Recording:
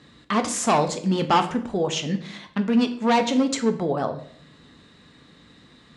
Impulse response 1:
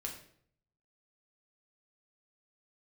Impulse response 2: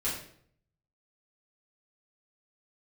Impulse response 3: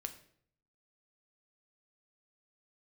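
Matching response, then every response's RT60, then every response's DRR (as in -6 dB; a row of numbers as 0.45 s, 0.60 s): 3; 0.60 s, 0.60 s, 0.60 s; 0.0 dB, -9.5 dB, 6.5 dB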